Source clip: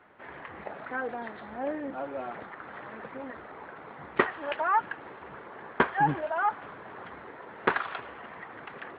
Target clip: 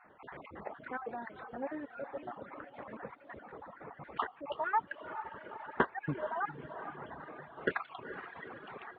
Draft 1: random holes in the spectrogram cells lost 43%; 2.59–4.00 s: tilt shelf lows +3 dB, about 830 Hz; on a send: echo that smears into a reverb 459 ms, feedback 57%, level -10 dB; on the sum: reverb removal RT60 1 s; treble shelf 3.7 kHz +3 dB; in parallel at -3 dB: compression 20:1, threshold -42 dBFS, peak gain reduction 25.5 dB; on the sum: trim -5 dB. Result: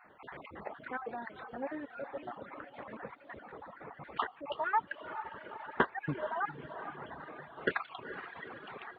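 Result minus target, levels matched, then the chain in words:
4 kHz band +3.5 dB
random holes in the spectrogram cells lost 43%; 2.59–4.00 s: tilt shelf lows +3 dB, about 830 Hz; on a send: echo that smears into a reverb 459 ms, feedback 57%, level -10 dB; on the sum: reverb removal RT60 1 s; treble shelf 3.7 kHz -8 dB; in parallel at -3 dB: compression 20:1, threshold -42 dBFS, peak gain reduction 25 dB; on the sum: trim -5 dB

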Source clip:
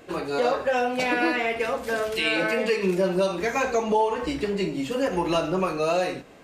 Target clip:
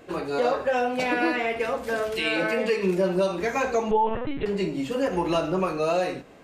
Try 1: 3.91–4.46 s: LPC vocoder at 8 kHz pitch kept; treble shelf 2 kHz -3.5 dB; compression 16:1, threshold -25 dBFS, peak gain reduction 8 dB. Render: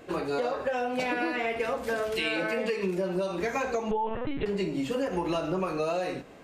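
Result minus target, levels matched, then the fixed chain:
compression: peak gain reduction +8 dB
3.91–4.46 s: LPC vocoder at 8 kHz pitch kept; treble shelf 2 kHz -3.5 dB

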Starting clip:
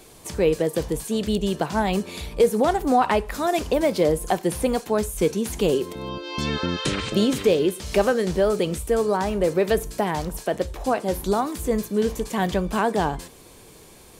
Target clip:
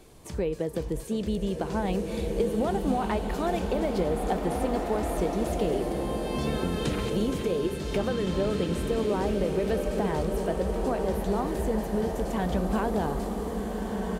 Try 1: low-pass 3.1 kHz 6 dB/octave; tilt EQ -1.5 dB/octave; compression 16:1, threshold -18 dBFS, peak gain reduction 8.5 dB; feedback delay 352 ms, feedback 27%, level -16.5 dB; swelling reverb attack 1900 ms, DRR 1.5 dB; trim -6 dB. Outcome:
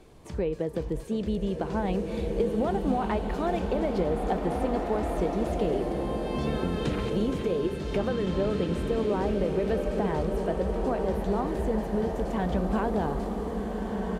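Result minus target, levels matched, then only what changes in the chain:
4 kHz band -3.5 dB
remove: low-pass 3.1 kHz 6 dB/octave

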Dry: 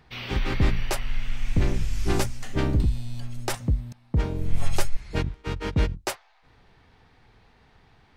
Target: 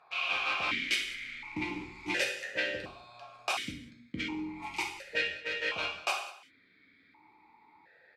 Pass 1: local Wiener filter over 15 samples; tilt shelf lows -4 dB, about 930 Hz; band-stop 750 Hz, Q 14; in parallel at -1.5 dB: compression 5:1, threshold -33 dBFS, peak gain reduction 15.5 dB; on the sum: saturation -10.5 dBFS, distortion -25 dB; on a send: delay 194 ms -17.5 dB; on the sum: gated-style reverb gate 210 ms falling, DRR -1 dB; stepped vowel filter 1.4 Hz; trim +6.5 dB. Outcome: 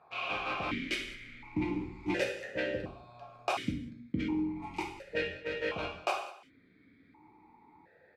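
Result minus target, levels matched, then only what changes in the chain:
1 kHz band +3.0 dB
change: tilt shelf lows -14 dB, about 930 Hz

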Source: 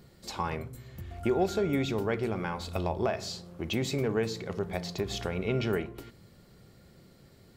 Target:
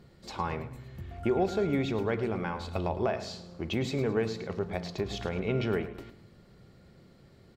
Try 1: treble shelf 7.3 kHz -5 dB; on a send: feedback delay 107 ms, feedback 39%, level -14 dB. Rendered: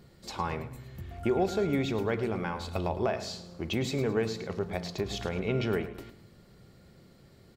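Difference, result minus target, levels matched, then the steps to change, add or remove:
8 kHz band +4.5 dB
change: treble shelf 7.3 kHz -15 dB

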